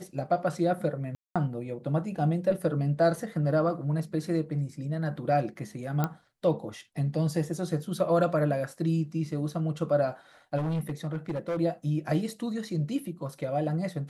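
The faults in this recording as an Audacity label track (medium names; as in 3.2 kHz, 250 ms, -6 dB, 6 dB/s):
1.150000	1.360000	dropout 206 ms
6.040000	6.040000	pop -14 dBFS
10.570000	11.580000	clipped -26.5 dBFS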